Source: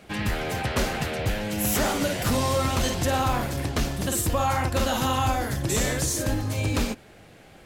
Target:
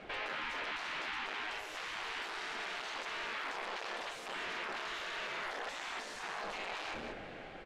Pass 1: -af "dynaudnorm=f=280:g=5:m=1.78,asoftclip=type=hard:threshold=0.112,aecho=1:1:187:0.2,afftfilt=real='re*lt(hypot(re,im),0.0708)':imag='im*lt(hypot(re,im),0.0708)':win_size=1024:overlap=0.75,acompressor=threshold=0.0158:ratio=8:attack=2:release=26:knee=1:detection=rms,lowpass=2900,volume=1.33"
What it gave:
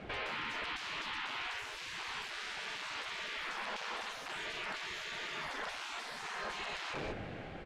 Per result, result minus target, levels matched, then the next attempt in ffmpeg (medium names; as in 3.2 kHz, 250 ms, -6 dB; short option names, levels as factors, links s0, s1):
125 Hz band +8.0 dB; hard clipper: distortion -5 dB
-af "dynaudnorm=f=280:g=5:m=1.78,asoftclip=type=hard:threshold=0.112,aecho=1:1:187:0.2,afftfilt=real='re*lt(hypot(re,im),0.0708)':imag='im*lt(hypot(re,im),0.0708)':win_size=1024:overlap=0.75,acompressor=threshold=0.0158:ratio=8:attack=2:release=26:knee=1:detection=rms,lowpass=2900,equalizer=f=93:w=0.51:g=-12.5,volume=1.33"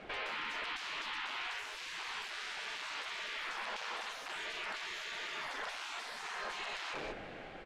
hard clipper: distortion -5 dB
-af "dynaudnorm=f=280:g=5:m=1.78,asoftclip=type=hard:threshold=0.0473,aecho=1:1:187:0.2,afftfilt=real='re*lt(hypot(re,im),0.0708)':imag='im*lt(hypot(re,im),0.0708)':win_size=1024:overlap=0.75,acompressor=threshold=0.0158:ratio=8:attack=2:release=26:knee=1:detection=rms,lowpass=2900,equalizer=f=93:w=0.51:g=-12.5,volume=1.33"